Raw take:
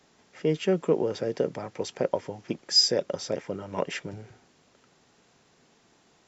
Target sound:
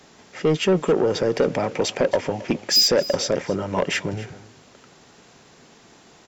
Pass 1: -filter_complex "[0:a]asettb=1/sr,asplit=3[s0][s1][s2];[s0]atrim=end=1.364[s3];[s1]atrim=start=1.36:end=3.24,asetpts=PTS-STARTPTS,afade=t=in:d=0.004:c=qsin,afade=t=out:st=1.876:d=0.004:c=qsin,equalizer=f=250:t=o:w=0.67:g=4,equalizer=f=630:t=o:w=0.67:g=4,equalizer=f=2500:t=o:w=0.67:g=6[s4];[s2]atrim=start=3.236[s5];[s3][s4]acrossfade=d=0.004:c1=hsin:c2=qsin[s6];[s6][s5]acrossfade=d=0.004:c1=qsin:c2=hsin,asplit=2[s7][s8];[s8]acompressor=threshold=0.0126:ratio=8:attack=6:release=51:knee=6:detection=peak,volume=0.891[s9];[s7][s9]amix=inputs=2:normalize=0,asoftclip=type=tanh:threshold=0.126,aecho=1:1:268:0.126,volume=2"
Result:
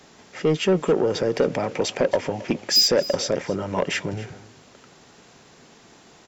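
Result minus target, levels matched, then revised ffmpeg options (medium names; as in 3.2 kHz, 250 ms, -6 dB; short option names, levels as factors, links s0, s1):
compression: peak gain reduction +8.5 dB
-filter_complex "[0:a]asettb=1/sr,asplit=3[s0][s1][s2];[s0]atrim=end=1.364[s3];[s1]atrim=start=1.36:end=3.24,asetpts=PTS-STARTPTS,afade=t=in:d=0.004:c=qsin,afade=t=out:st=1.876:d=0.004:c=qsin,equalizer=f=250:t=o:w=0.67:g=4,equalizer=f=630:t=o:w=0.67:g=4,equalizer=f=2500:t=o:w=0.67:g=6[s4];[s2]atrim=start=3.236[s5];[s3][s4]acrossfade=d=0.004:c1=hsin:c2=qsin[s6];[s6][s5]acrossfade=d=0.004:c1=qsin:c2=hsin,asplit=2[s7][s8];[s8]acompressor=threshold=0.0376:ratio=8:attack=6:release=51:knee=6:detection=peak,volume=0.891[s9];[s7][s9]amix=inputs=2:normalize=0,asoftclip=type=tanh:threshold=0.126,aecho=1:1:268:0.126,volume=2"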